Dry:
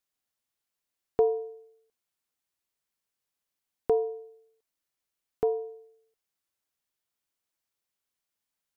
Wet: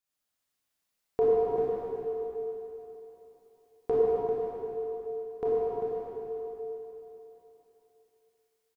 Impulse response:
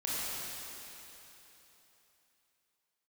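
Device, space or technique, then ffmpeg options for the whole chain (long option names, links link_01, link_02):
cave: -filter_complex "[0:a]aecho=1:1:394:0.398[link_01];[1:a]atrim=start_sample=2205[link_02];[link_01][link_02]afir=irnorm=-1:irlink=0,asettb=1/sr,asplit=3[link_03][link_04][link_05];[link_03]atrim=end=1.544[link_06];[link_04]atrim=start=1.54:end=4.21,asetpts=PTS-STARTPTS,afade=type=in:duration=0.004:curve=qsin,afade=type=out:start_time=2.666:duration=0.004:curve=qsin,asplit=2[link_07][link_08];[link_08]adelay=15,volume=-4.5dB[link_09];[link_07][link_09]amix=inputs=2:normalize=0,atrim=end_sample=117747[link_10];[link_05]atrim=start=4.206[link_11];[link_06][link_10]acrossfade=duration=0.004:curve1=hsin:curve2=qsin[link_12];[link_12][link_11]acrossfade=duration=0.004:curve1=qsin:curve2=hsin,volume=-2dB"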